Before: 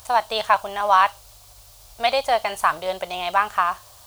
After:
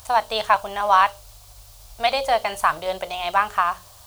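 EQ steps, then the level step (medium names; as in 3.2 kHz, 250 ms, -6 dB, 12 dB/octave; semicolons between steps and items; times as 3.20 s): bass shelf 120 Hz +6.5 dB; hum notches 60/120/180/240/300/360/420/480/540/600 Hz; 0.0 dB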